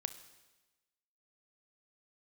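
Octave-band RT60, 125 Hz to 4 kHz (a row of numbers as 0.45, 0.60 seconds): 1.1, 1.2, 1.2, 1.1, 1.1, 1.1 seconds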